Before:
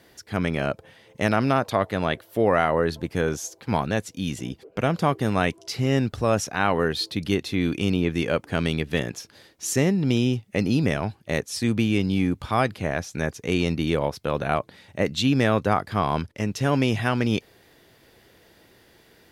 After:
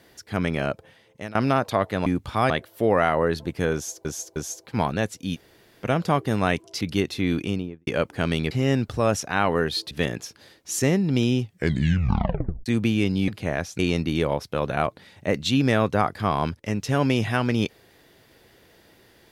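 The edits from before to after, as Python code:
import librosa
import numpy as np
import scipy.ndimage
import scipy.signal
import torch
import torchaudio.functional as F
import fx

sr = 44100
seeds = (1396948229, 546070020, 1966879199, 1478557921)

y = fx.studio_fade_out(x, sr, start_s=7.68, length_s=0.53)
y = fx.edit(y, sr, fx.fade_out_to(start_s=0.5, length_s=0.85, curve='qsin', floor_db=-21.0),
    fx.repeat(start_s=3.3, length_s=0.31, count=3),
    fx.room_tone_fill(start_s=4.29, length_s=0.49, crossfade_s=0.04),
    fx.move(start_s=5.75, length_s=1.4, to_s=8.85),
    fx.tape_stop(start_s=10.38, length_s=1.22),
    fx.move(start_s=12.22, length_s=0.44, to_s=2.06),
    fx.cut(start_s=13.17, length_s=0.34), tone=tone)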